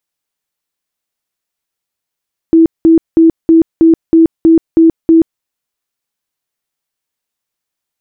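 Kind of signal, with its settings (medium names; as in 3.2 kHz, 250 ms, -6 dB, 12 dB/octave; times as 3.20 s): tone bursts 327 Hz, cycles 42, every 0.32 s, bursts 9, -2.5 dBFS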